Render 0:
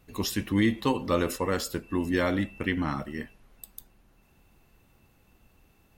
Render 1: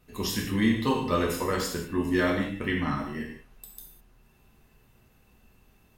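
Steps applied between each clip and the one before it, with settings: non-linear reverb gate 0.23 s falling, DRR -2 dB; gain -3 dB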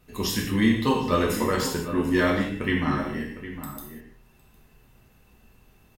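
outdoor echo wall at 130 m, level -11 dB; gain +3 dB

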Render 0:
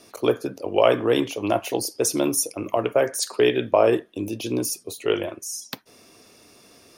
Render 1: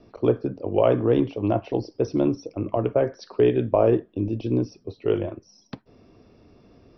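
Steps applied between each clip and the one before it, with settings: Chebyshev low-pass 5800 Hz, order 10; tilt -4.5 dB/oct; gain -5 dB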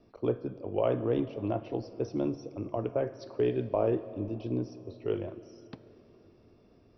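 reverb RT60 4.0 s, pre-delay 14 ms, DRR 13.5 dB; gain -9 dB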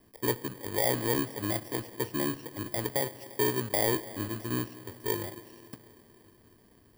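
FFT order left unsorted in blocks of 32 samples

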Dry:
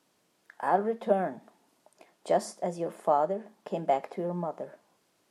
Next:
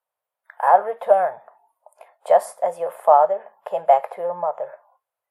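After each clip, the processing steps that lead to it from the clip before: spectral noise reduction 23 dB; EQ curve 110 Hz 0 dB, 280 Hz -25 dB, 520 Hz +10 dB, 890 Hz +13 dB, 3100 Hz +3 dB, 5800 Hz -7 dB, 12000 Hz +13 dB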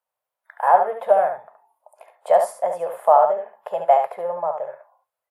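echo 71 ms -6.5 dB; gain -1 dB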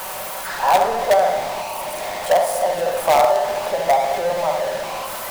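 zero-crossing step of -22 dBFS; shoebox room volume 1700 m³, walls mixed, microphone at 1.1 m; in parallel at -8 dB: wrapped overs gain 6 dB; on the sum: gain -4 dB

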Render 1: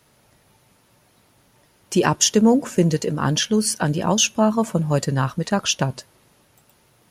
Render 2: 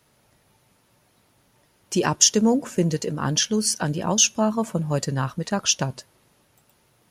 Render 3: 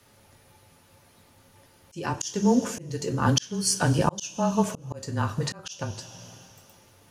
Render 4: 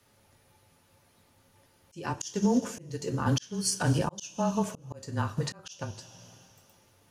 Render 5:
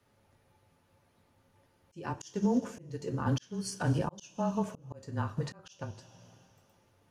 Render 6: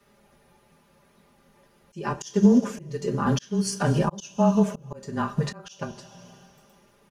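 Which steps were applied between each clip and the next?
dynamic EQ 5800 Hz, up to +7 dB, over -36 dBFS, Q 1.4; gain -4 dB
frequency shift -22 Hz; two-slope reverb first 0.22 s, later 2.2 s, from -21 dB, DRR 5 dB; auto swell 0.619 s; gain +3.5 dB
limiter -15.5 dBFS, peak gain reduction 8.5 dB; upward expander 1.5:1, over -34 dBFS
high shelf 3100 Hz -10 dB; gain -3 dB
comb 5 ms, depth 98%; gain +6.5 dB

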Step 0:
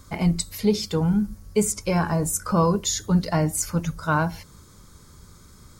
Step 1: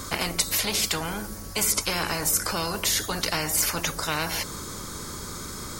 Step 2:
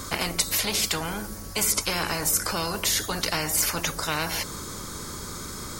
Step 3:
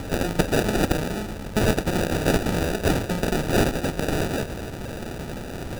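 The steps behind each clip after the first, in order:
spectral compressor 4:1
nothing audible
sample-and-hold 41×; gain +4 dB

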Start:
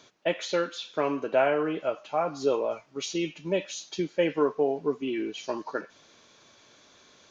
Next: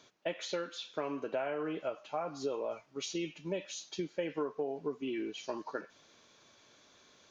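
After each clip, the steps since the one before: compressor 6:1, threshold -26 dBFS, peak gain reduction 8.5 dB; gain -5.5 dB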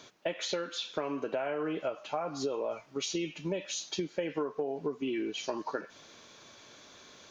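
compressor 2.5:1, threshold -41 dBFS, peak gain reduction 7.5 dB; gain +8.5 dB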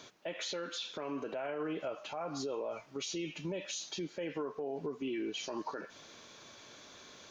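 limiter -30 dBFS, peak gain reduction 11 dB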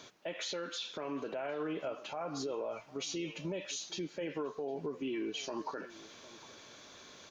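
outdoor echo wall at 130 m, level -18 dB

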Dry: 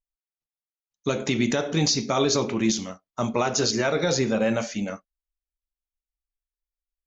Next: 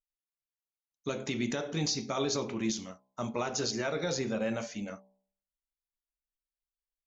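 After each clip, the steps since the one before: de-hum 64.27 Hz, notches 17; gain -9 dB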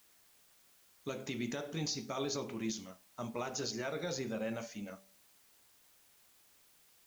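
requantised 10-bit, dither triangular; gain -6 dB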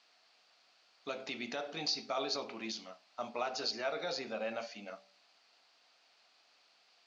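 speaker cabinet 320–5300 Hz, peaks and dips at 370 Hz -4 dB, 710 Hz +9 dB, 1300 Hz +4 dB, 2600 Hz +5 dB, 4500 Hz +9 dB

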